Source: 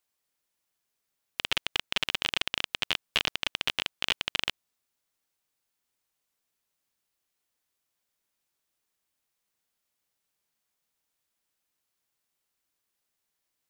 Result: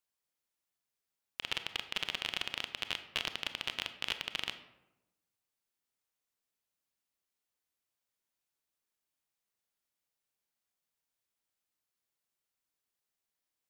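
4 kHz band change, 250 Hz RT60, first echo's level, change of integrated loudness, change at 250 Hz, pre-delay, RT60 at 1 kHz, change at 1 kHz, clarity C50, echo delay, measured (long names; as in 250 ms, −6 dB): −7.0 dB, 1.2 s, no echo audible, −7.0 dB, −7.0 dB, 25 ms, 0.90 s, −7.0 dB, 11.0 dB, no echo audible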